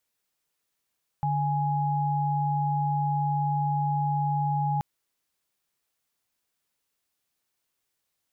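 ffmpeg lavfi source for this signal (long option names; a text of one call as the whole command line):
ffmpeg -f lavfi -i "aevalsrc='0.0501*(sin(2*PI*146.83*t)+sin(2*PI*830.61*t))':duration=3.58:sample_rate=44100" out.wav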